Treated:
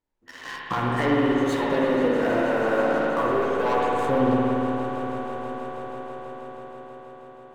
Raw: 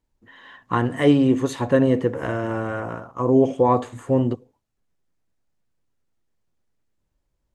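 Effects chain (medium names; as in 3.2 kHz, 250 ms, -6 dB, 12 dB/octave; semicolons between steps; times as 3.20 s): tone controls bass -9 dB, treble -6 dB; waveshaping leveller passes 3; compression 4:1, threshold -30 dBFS, peak gain reduction 16 dB; flange 0.58 Hz, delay 9.9 ms, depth 6.1 ms, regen +35%; echo with a slow build-up 161 ms, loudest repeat 5, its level -17 dB; spring tank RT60 3.4 s, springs 58 ms, chirp 60 ms, DRR -3.5 dB; trim +5.5 dB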